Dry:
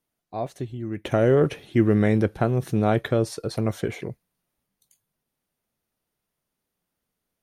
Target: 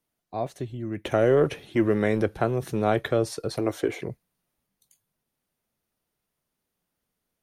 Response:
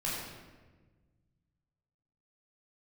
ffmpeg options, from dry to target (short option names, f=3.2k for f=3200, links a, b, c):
-filter_complex "[0:a]asettb=1/sr,asplit=3[a][b][c];[a]atrim=end=3.594[d];[b]atrim=start=3.59:end=3.99,asetpts=PTS-STARTPTS,afade=t=in:d=0.004:c=qsin,afade=t=out:st=0.396:d=0.004:c=qsin,lowshelf=f=240:t=q:w=3:g=-6.5[e];[c]atrim=start=3.986[f];[d][e]acrossfade=d=0.004:c1=hsin:c2=qsin[g];[g][f]acrossfade=d=0.004:c1=qsin:c2=hsin,acrossover=split=270[h][i];[h]asoftclip=type=tanh:threshold=-29dB[j];[j][i]amix=inputs=2:normalize=0"